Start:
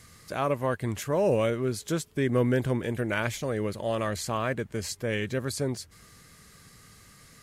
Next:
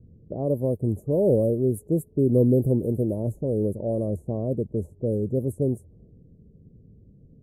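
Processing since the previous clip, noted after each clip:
inverse Chebyshev band-stop filter 1,400–4,900 Hz, stop band 60 dB
low-pass that shuts in the quiet parts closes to 340 Hz, open at −26 dBFS
level +6 dB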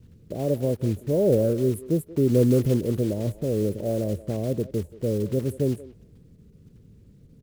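one scale factor per block 5 bits
far-end echo of a speakerphone 180 ms, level −16 dB

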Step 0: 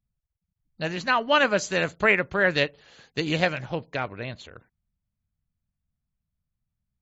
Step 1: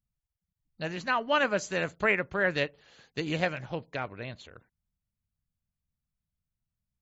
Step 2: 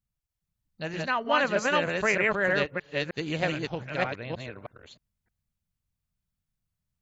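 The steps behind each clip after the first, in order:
dynamic equaliser 4,000 Hz, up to −4 dB, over −39 dBFS, Q 1.4; level −5 dB
delay that plays each chunk backwards 311 ms, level −0.5 dB

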